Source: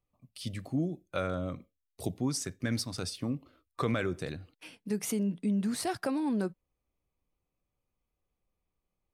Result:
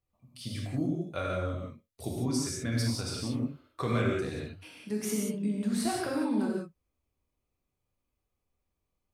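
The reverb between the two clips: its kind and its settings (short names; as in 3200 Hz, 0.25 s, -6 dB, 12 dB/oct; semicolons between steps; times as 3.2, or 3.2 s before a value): non-linear reverb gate 0.21 s flat, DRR -3 dB; gain -3.5 dB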